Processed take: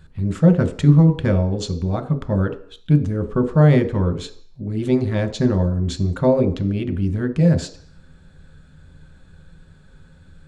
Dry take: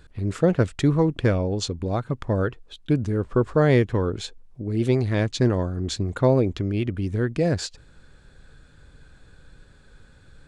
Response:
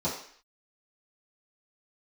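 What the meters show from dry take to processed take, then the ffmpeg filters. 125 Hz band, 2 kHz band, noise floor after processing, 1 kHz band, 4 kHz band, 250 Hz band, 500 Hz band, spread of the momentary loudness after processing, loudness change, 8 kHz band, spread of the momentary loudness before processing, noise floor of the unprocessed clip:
+6.0 dB, -0.5 dB, -49 dBFS, +0.5 dB, -1.5 dB, +5.5 dB, +1.0 dB, 11 LU, +4.5 dB, -1.5 dB, 9 LU, -53 dBFS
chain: -filter_complex "[0:a]asplit=2[s0][s1];[1:a]atrim=start_sample=2205,lowshelf=f=370:g=8.5[s2];[s1][s2]afir=irnorm=-1:irlink=0,volume=0.168[s3];[s0][s3]amix=inputs=2:normalize=0,volume=0.891"

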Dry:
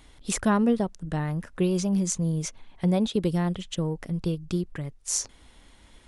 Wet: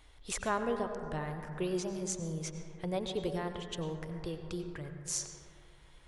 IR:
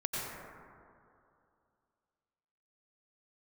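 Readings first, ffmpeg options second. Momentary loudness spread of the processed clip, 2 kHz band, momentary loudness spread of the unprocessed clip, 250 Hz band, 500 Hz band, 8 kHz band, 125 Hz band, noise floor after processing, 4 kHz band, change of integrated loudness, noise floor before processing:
8 LU, -5.0 dB, 8 LU, -13.5 dB, -6.0 dB, -8.0 dB, -12.5 dB, -58 dBFS, -6.5 dB, -10.0 dB, -55 dBFS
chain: -filter_complex "[0:a]equalizer=f=210:w=1.7:g=-13.5,asplit=2[s0][s1];[1:a]atrim=start_sample=2205,lowpass=5800[s2];[s1][s2]afir=irnorm=-1:irlink=0,volume=0.398[s3];[s0][s3]amix=inputs=2:normalize=0,volume=0.398"

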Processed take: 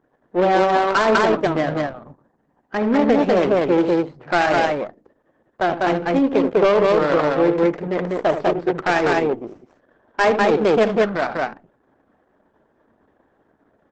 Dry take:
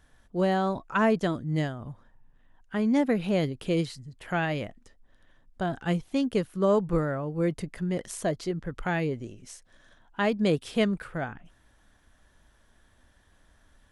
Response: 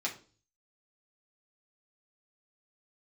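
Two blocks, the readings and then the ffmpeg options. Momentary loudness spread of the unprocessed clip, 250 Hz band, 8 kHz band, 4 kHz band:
12 LU, +7.0 dB, no reading, +8.5 dB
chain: -filter_complex "[0:a]aeval=exprs='if(lt(val(0),0),0.251*val(0),val(0))':c=same,highpass=340,asoftclip=type=tanh:threshold=0.0596,aecho=1:1:75.8|198.3:0.355|0.891,asplit=2[s0][s1];[1:a]atrim=start_sample=2205[s2];[s1][s2]afir=irnorm=-1:irlink=0,volume=0.211[s3];[s0][s3]amix=inputs=2:normalize=0,adynamicsmooth=sensitivity=3:basefreq=600,alimiter=level_in=15:limit=0.891:release=50:level=0:latency=1,volume=0.447" -ar 48000 -c:a libopus -b:a 12k

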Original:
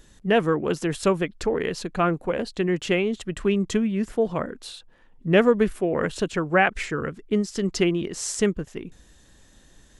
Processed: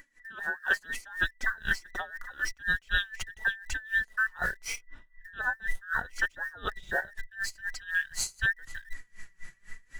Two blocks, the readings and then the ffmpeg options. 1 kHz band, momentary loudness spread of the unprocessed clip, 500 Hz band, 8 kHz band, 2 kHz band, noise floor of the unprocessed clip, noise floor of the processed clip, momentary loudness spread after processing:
-11.0 dB, 11 LU, -24.5 dB, -4.5 dB, +2.5 dB, -55 dBFS, -63 dBFS, 11 LU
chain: -filter_complex "[0:a]afftfilt=real='real(if(between(b,1,1012),(2*floor((b-1)/92)+1)*92-b,b),0)':imag='imag(if(between(b,1,1012),(2*floor((b-1)/92)+1)*92-b,b),0)*if(between(b,1,1012),-1,1)':win_size=2048:overlap=0.75,highshelf=f=4200:g=-2.5,flanger=delay=3.1:depth=2.6:regen=33:speed=0.79:shape=triangular,asplit=2[s0][s1];[s1]acrusher=bits=6:mix=0:aa=0.000001,volume=0.335[s2];[s0][s2]amix=inputs=2:normalize=0,asubboost=boost=8:cutoff=84,areverse,acompressor=threshold=0.0282:ratio=6,areverse,aeval=exprs='val(0)*pow(10,-25*(0.5-0.5*cos(2*PI*4*n/s))/20)':c=same,volume=2.66"

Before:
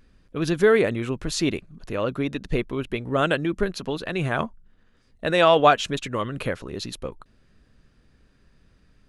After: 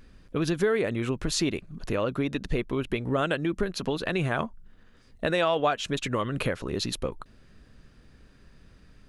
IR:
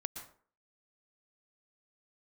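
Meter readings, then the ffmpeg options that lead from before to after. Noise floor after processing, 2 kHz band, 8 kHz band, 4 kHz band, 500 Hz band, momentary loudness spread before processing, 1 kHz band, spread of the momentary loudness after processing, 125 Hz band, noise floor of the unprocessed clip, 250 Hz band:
-56 dBFS, -4.5 dB, -0.5 dB, -3.0 dB, -5.5 dB, 15 LU, -7.5 dB, 8 LU, -1.5 dB, -61 dBFS, -2.5 dB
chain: -af "acompressor=threshold=0.0316:ratio=3,volume=1.68"

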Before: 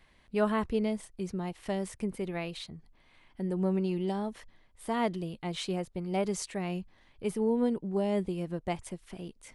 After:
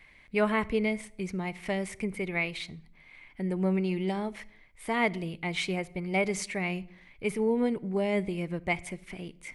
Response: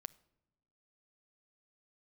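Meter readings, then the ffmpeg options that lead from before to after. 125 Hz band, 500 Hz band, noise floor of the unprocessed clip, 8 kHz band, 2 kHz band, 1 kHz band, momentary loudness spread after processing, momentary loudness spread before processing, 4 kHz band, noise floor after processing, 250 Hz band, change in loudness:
+1.5 dB, +1.5 dB, -64 dBFS, +1.5 dB, +11.0 dB, +1.5 dB, 13 LU, 14 LU, +3.0 dB, -57 dBFS, +1.0 dB, +2.0 dB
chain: -filter_complex "[0:a]equalizer=f=2200:t=o:w=0.38:g=15[s0];[1:a]atrim=start_sample=2205,afade=t=out:st=0.36:d=0.01,atrim=end_sample=16317[s1];[s0][s1]afir=irnorm=-1:irlink=0,volume=2"

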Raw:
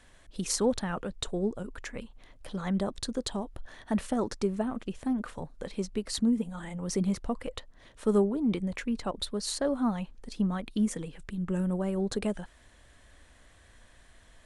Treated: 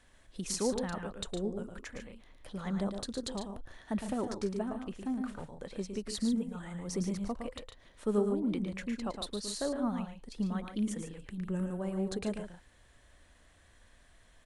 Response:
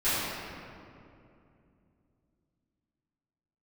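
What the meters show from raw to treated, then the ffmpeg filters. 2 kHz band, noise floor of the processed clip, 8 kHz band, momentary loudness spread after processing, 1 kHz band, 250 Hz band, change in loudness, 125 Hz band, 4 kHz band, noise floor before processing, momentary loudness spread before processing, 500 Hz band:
-4.5 dB, -62 dBFS, -4.5 dB, 12 LU, -4.5 dB, -4.5 dB, -4.5 dB, -4.5 dB, -4.5 dB, -58 dBFS, 13 LU, -4.5 dB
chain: -af "aecho=1:1:110.8|145.8:0.447|0.316,volume=0.531"

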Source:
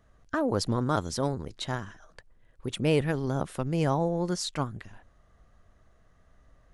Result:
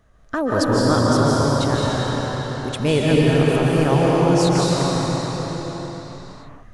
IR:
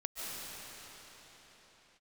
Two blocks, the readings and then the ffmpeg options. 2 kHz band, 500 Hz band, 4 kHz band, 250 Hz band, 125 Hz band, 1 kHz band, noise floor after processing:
+12.0 dB, +12.0 dB, +11.5 dB, +12.0 dB, +12.0 dB, +11.5 dB, -43 dBFS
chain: -filter_complex "[1:a]atrim=start_sample=2205,asetrate=42336,aresample=44100[s0];[0:a][s0]afir=irnorm=-1:irlink=0,volume=2.66"

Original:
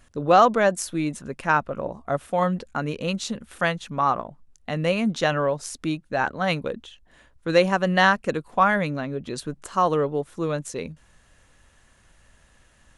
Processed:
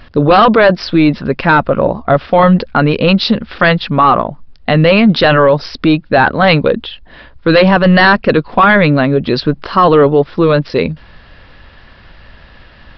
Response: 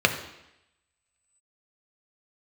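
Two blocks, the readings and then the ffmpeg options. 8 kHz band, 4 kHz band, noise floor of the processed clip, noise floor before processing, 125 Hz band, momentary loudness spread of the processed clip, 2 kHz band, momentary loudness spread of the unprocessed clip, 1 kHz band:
under -10 dB, +14.5 dB, -40 dBFS, -58 dBFS, +16.0 dB, 8 LU, +13.0 dB, 14 LU, +11.0 dB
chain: -af "apsyclip=11.2,aresample=11025,aresample=44100,volume=0.75"

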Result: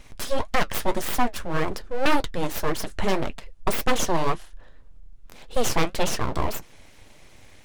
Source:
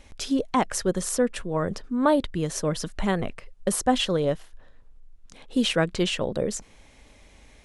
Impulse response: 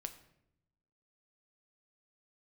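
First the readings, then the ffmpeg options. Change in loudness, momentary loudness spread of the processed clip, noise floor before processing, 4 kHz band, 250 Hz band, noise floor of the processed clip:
-1.0 dB, 7 LU, -54 dBFS, -2.0 dB, -4.5 dB, -49 dBFS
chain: -af "aeval=exprs='abs(val(0))':c=same,flanger=delay=5.5:depth=6.6:regen=-57:speed=1.8:shape=triangular,aeval=exprs='0.141*(abs(mod(val(0)/0.141+3,4)-2)-1)':c=same,volume=2.51"

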